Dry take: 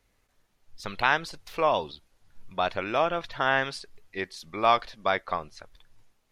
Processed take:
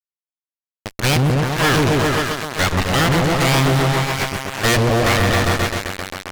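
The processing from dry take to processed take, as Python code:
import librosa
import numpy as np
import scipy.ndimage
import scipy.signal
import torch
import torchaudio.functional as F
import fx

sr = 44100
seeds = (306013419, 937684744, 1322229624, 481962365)

y = fx.cheby_harmonics(x, sr, harmonics=(3, 4, 7, 8), levels_db=(-17, -15, -21, -18), full_scale_db=-6.0)
y = fx.echo_opening(y, sr, ms=133, hz=400, octaves=1, feedback_pct=70, wet_db=0)
y = fx.fuzz(y, sr, gain_db=38.0, gate_db=-37.0)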